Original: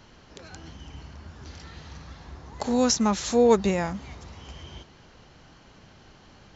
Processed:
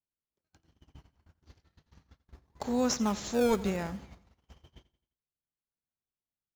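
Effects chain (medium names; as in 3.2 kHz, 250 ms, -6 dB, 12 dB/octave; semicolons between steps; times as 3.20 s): gate -39 dBFS, range -44 dB; in parallel at -8 dB: decimation with a swept rate 27×, swing 160% 0.63 Hz; on the sum: feedback delay 87 ms, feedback 43%, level -18 dB; trim -9 dB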